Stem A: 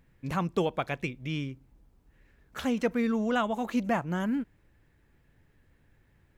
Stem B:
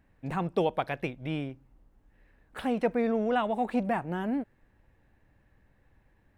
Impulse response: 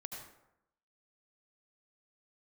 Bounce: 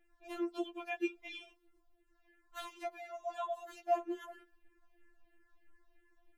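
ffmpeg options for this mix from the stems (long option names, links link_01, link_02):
-filter_complex "[0:a]acompressor=threshold=-35dB:ratio=1.5,volume=-5dB[link_01];[1:a]acompressor=threshold=-36dB:ratio=6,asplit=2[link_02][link_03];[link_03]afreqshift=-3[link_04];[link_02][link_04]amix=inputs=2:normalize=1,volume=2dB,asplit=2[link_05][link_06];[link_06]apad=whole_len=281313[link_07];[link_01][link_07]sidechaingate=range=-33dB:threshold=-57dB:ratio=16:detection=peak[link_08];[link_08][link_05]amix=inputs=2:normalize=0,afftfilt=real='re*4*eq(mod(b,16),0)':imag='im*4*eq(mod(b,16),0)':win_size=2048:overlap=0.75"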